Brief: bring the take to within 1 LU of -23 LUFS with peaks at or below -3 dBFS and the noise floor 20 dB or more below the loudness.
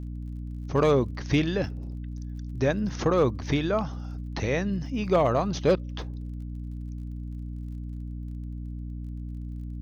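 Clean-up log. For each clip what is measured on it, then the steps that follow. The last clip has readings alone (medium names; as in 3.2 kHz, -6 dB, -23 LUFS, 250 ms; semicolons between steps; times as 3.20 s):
tick rate 38 per s; hum 60 Hz; highest harmonic 300 Hz; hum level -32 dBFS; loudness -29.0 LUFS; peak level -13.0 dBFS; loudness target -23.0 LUFS
-> de-click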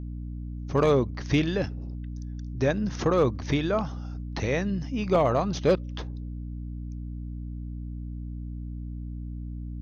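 tick rate 0.41 per s; hum 60 Hz; highest harmonic 300 Hz; hum level -33 dBFS
-> hum notches 60/120/180/240/300 Hz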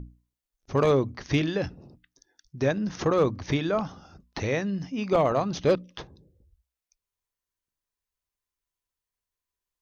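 hum not found; loudness -26.5 LUFS; peak level -11.0 dBFS; loudness target -23.0 LUFS
-> trim +3.5 dB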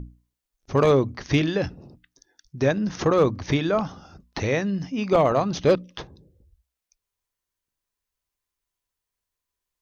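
loudness -23.0 LUFS; peak level -7.5 dBFS; noise floor -86 dBFS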